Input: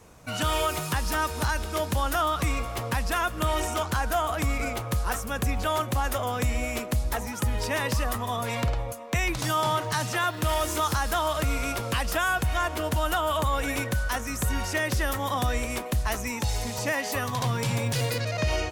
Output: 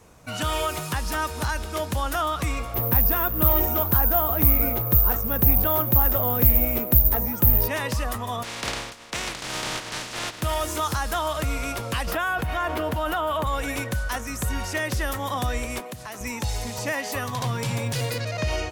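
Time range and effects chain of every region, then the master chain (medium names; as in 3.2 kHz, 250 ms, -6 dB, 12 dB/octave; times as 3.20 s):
2.74–7.68 s: tilt shelf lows +6 dB, about 900 Hz + careless resampling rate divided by 3×, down filtered, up zero stuff + loudspeaker Doppler distortion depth 0.21 ms
8.42–10.41 s: spectral contrast reduction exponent 0.18 + distance through air 84 m
12.07–13.47 s: high-pass 110 Hz 6 dB/octave + peaking EQ 7.4 kHz -11.5 dB 1.7 oct + level flattener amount 70%
15.80–16.21 s: high-pass 110 Hz 24 dB/octave + compression 3:1, threshold -34 dBFS
whole clip: none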